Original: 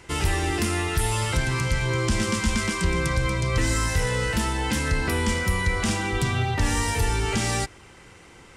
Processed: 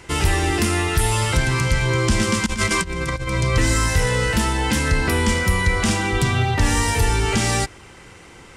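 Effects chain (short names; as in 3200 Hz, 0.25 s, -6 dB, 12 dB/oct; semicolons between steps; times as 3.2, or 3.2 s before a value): 2.46–3.34 negative-ratio compressor -27 dBFS, ratio -0.5; gain +5 dB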